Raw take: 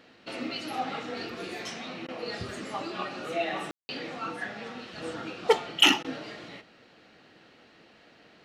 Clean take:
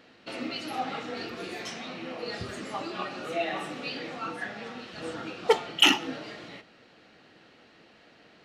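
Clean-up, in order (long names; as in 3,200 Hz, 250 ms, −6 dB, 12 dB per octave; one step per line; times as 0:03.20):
ambience match 0:03.71–0:03.89
repair the gap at 0:02.07/0:06.03, 13 ms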